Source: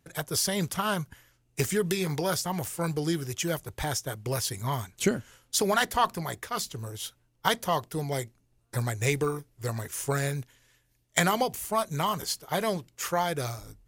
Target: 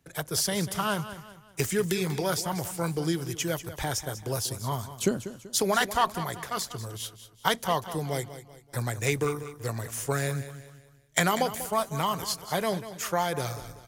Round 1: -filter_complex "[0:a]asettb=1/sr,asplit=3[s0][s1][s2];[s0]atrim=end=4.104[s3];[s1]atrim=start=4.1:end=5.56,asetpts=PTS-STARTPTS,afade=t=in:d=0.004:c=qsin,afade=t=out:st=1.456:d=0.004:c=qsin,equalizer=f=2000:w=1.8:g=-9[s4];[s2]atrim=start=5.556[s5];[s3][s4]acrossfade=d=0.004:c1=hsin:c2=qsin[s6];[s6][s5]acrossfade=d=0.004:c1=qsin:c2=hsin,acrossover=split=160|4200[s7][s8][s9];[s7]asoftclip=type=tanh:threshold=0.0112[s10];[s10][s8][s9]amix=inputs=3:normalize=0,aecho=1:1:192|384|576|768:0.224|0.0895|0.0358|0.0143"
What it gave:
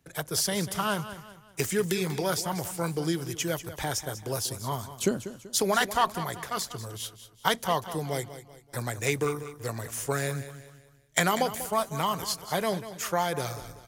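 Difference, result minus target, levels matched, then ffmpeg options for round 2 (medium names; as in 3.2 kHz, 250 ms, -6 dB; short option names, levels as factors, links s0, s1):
saturation: distortion +10 dB
-filter_complex "[0:a]asettb=1/sr,asplit=3[s0][s1][s2];[s0]atrim=end=4.104[s3];[s1]atrim=start=4.1:end=5.56,asetpts=PTS-STARTPTS,afade=t=in:d=0.004:c=qsin,afade=t=out:st=1.456:d=0.004:c=qsin,equalizer=f=2000:w=1.8:g=-9[s4];[s2]atrim=start=5.556[s5];[s3][s4]acrossfade=d=0.004:c1=hsin:c2=qsin[s6];[s6][s5]acrossfade=d=0.004:c1=qsin:c2=hsin,acrossover=split=160|4200[s7][s8][s9];[s7]asoftclip=type=tanh:threshold=0.0335[s10];[s10][s8][s9]amix=inputs=3:normalize=0,aecho=1:1:192|384|576|768:0.224|0.0895|0.0358|0.0143"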